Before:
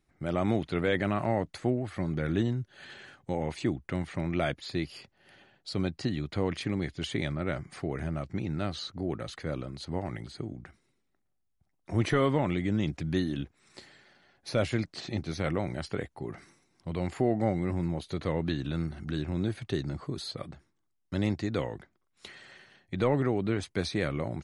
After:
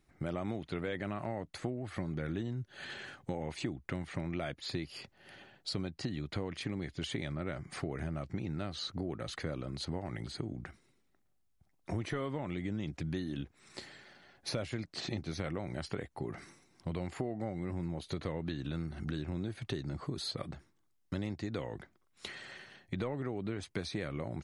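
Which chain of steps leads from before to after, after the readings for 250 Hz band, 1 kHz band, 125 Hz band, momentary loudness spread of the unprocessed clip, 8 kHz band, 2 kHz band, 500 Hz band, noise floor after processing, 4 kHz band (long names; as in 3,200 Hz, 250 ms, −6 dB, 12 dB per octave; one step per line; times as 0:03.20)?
−7.5 dB, −8.5 dB, −6.5 dB, 13 LU, −2.0 dB, −6.5 dB, −8.5 dB, −73 dBFS, −2.5 dB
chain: downward compressor 6 to 1, threshold −37 dBFS, peak gain reduction 15.5 dB
level +3 dB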